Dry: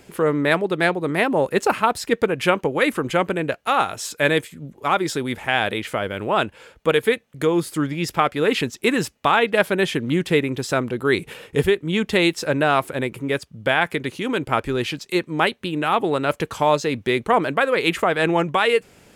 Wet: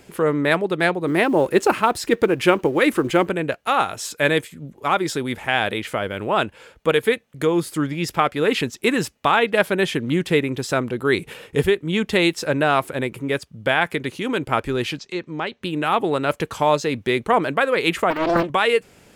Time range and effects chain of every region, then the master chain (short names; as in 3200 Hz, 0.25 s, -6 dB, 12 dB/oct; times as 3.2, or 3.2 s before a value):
1.07–3.29 G.711 law mismatch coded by mu + bell 340 Hz +8 dB 0.34 oct
14.97–15.63 Chebyshev low-pass 6300 Hz, order 3 + compressor 1.5:1, threshold -33 dBFS
18.1–18.5 de-esser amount 95% + comb 3.2 ms, depth 71% + Doppler distortion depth 0.84 ms
whole clip: dry